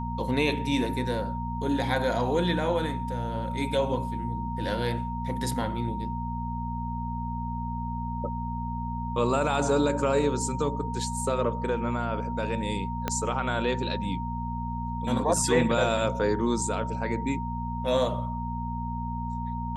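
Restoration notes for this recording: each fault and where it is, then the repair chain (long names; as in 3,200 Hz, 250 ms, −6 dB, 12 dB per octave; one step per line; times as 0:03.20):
mains hum 60 Hz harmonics 4 −33 dBFS
whistle 930 Hz −34 dBFS
0:13.08: click −12 dBFS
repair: click removal
notch filter 930 Hz, Q 30
hum removal 60 Hz, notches 4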